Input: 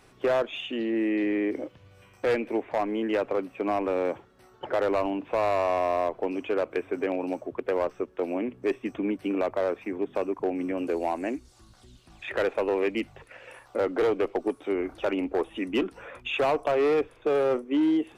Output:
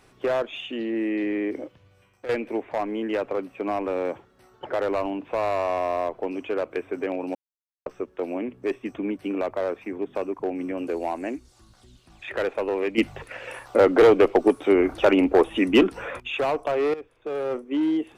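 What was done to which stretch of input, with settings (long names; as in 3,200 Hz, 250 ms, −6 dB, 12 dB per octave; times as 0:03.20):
0:01.55–0:02.29: fade out, to −11.5 dB
0:07.35–0:07.86: silence
0:12.98–0:16.20: clip gain +9.5 dB
0:16.94–0:17.81: fade in, from −15 dB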